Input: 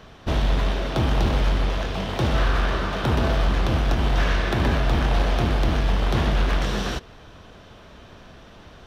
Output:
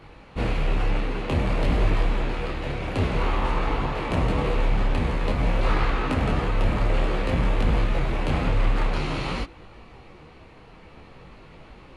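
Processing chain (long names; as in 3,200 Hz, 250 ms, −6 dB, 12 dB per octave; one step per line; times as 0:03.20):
wrong playback speed 45 rpm record played at 33 rpm
micro pitch shift up and down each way 18 cents
level +2.5 dB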